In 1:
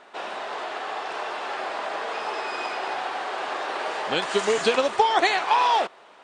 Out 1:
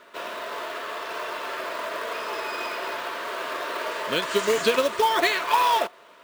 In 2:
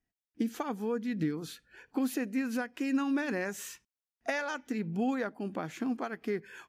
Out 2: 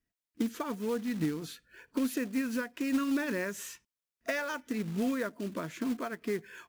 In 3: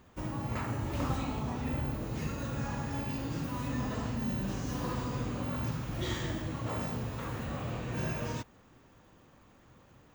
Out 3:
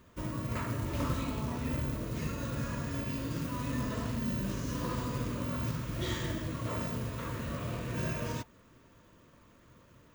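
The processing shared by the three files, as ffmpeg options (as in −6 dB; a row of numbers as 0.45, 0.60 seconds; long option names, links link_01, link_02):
-af "asuperstop=centerf=790:order=20:qfactor=5.4,acrusher=bits=4:mode=log:mix=0:aa=0.000001"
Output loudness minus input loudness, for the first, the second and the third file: −0.5, 0.0, 0.0 LU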